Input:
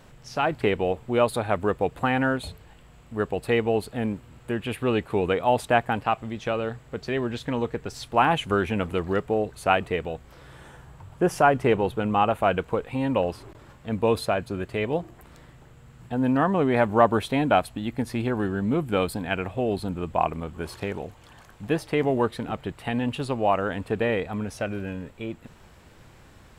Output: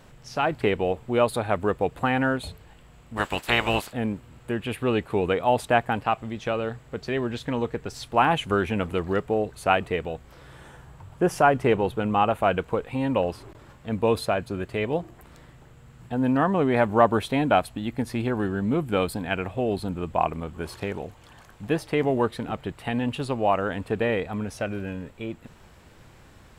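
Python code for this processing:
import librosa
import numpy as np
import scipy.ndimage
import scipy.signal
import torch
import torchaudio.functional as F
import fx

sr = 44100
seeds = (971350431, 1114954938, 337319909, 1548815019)

y = fx.spec_clip(x, sr, under_db=27, at=(3.16, 3.91), fade=0.02)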